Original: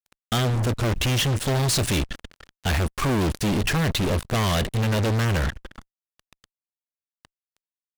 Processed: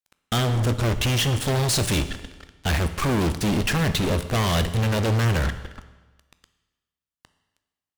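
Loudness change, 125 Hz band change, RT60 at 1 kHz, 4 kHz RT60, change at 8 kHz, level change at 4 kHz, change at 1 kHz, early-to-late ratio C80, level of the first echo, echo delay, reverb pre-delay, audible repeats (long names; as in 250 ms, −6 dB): +0.5 dB, +0.5 dB, 1.3 s, 1.1 s, +0.5 dB, +0.5 dB, +0.5 dB, 14.0 dB, no echo audible, no echo audible, 12 ms, no echo audible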